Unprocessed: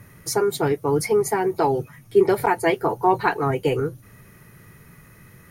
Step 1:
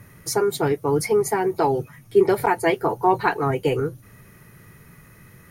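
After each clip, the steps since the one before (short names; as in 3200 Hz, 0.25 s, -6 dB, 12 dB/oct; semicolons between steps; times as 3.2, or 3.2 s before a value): nothing audible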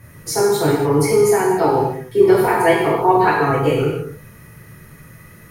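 non-linear reverb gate 0.32 s falling, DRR -6 dB; gain -1.5 dB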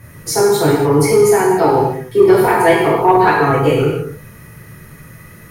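soft clip -4 dBFS, distortion -23 dB; gain +4 dB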